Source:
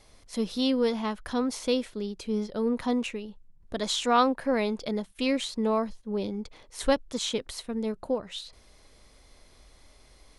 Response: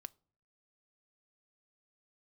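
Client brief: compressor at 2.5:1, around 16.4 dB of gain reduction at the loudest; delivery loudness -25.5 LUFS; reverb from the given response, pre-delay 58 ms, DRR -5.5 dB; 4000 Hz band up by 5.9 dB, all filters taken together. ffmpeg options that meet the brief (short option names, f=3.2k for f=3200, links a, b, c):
-filter_complex "[0:a]equalizer=f=4k:t=o:g=7,acompressor=threshold=-43dB:ratio=2.5,asplit=2[a][b];[1:a]atrim=start_sample=2205,adelay=58[c];[b][c]afir=irnorm=-1:irlink=0,volume=11dB[d];[a][d]amix=inputs=2:normalize=0,volume=9dB"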